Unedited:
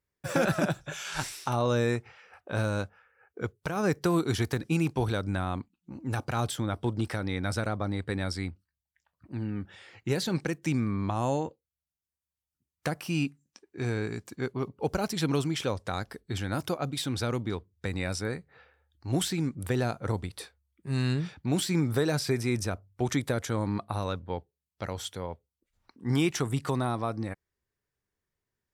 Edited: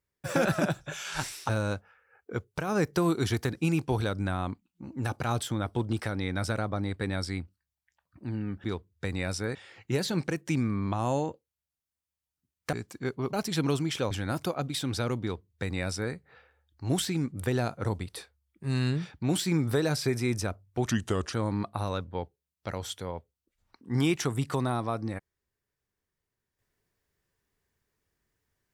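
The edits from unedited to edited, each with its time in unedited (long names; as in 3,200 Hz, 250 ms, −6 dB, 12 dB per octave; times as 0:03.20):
0:01.49–0:02.57: remove
0:12.90–0:14.10: remove
0:14.70–0:14.98: remove
0:15.76–0:16.34: remove
0:17.45–0:18.36: duplicate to 0:09.72
0:23.14–0:23.48: play speed 81%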